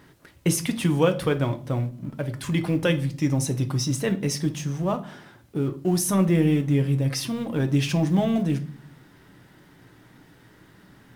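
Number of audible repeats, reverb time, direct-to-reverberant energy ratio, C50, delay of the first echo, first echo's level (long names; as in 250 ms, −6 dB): no echo audible, 0.45 s, 7.0 dB, 16.0 dB, no echo audible, no echo audible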